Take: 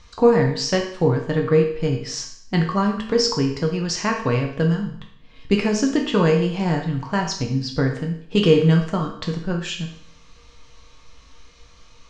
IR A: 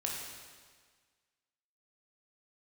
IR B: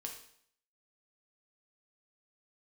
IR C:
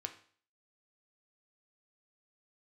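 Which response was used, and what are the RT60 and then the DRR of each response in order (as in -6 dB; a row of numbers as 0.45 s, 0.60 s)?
B; 1.6 s, 0.65 s, 0.50 s; -2.5 dB, 1.0 dB, 5.0 dB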